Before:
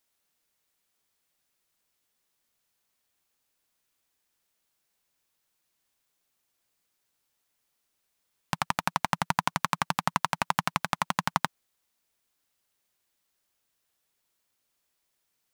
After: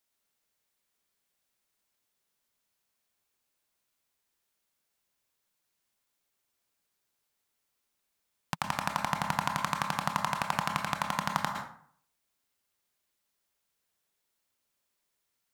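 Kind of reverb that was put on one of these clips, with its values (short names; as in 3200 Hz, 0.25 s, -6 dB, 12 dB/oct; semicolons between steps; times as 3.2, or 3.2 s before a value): plate-style reverb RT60 0.58 s, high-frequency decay 0.6×, pre-delay 0.1 s, DRR 3.5 dB; gain -4 dB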